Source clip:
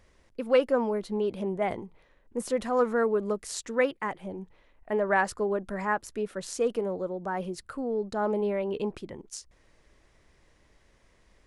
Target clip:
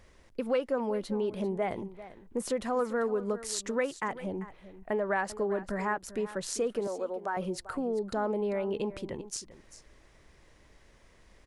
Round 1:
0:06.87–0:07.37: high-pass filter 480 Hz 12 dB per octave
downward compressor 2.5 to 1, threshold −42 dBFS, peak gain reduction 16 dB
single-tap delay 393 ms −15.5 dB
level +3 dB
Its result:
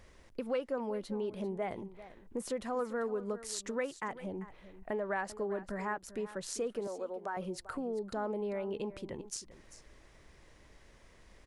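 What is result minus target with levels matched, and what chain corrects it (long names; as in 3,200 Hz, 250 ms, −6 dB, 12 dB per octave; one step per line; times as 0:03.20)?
downward compressor: peak gain reduction +5.5 dB
0:06.87–0:07.37: high-pass filter 480 Hz 12 dB per octave
downward compressor 2.5 to 1, threshold −33 dBFS, peak gain reduction 10.5 dB
single-tap delay 393 ms −15.5 dB
level +3 dB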